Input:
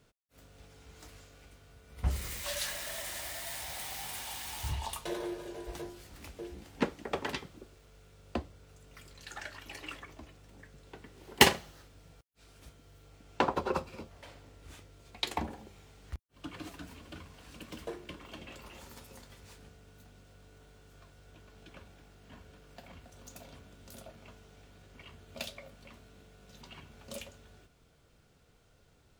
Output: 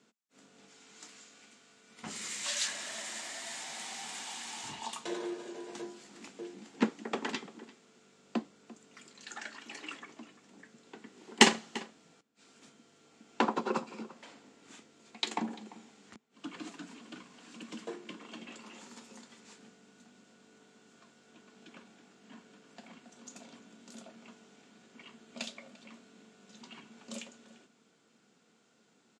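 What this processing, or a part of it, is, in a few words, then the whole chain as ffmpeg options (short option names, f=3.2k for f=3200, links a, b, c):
television speaker: -filter_complex "[0:a]asettb=1/sr,asplit=3[a][b][c];[a]atrim=end=0.684[d];[b]atrim=start=0.68:end=2.68,asetpts=PTS-STARTPTS,afade=t=in:d=0.004:c=qsin,afade=t=out:st=1.996:d=0.004:c=qsin,tiltshelf=f=1.1k:g=-4[e];[c]atrim=start=2.676[f];[d][e]acrossfade=d=0.004:c1=hsin:c2=qsin[g];[g][f]acrossfade=d=0.004:c1=qsin:c2=hsin,highpass=f=200:w=0.5412,highpass=f=200:w=1.3066,equalizer=f=220:t=q:w=4:g=9,equalizer=f=580:t=q:w=4:g=-6,equalizer=f=7.3k:t=q:w=4:g=7,lowpass=f=7.9k:w=0.5412,lowpass=f=7.9k:w=1.3066,asplit=2[h][i];[i]adelay=344,volume=-18dB,highshelf=f=4k:g=-7.74[j];[h][j]amix=inputs=2:normalize=0"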